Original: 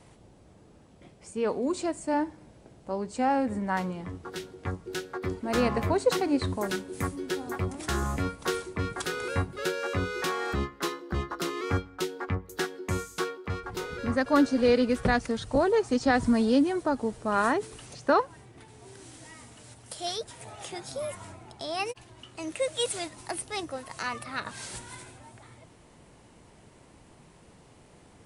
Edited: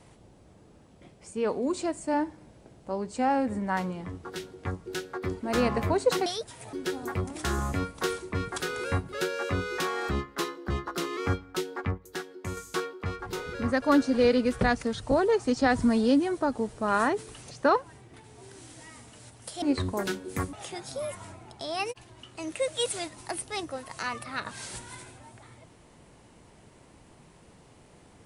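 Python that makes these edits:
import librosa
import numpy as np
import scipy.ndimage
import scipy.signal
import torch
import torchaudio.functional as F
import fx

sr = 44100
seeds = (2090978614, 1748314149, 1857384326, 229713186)

y = fx.edit(x, sr, fx.swap(start_s=6.26, length_s=0.91, other_s=20.06, other_length_s=0.47),
    fx.clip_gain(start_s=12.42, length_s=0.59, db=-5.5), tone=tone)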